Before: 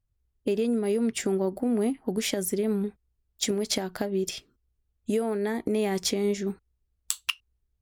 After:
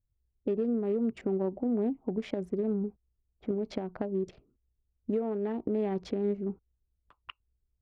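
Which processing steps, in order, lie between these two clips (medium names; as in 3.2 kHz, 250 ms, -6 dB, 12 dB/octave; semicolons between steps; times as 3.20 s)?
local Wiener filter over 25 samples; Bessel low-pass 1.4 kHz, order 2; level-controlled noise filter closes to 840 Hz, open at -27 dBFS; trim -3 dB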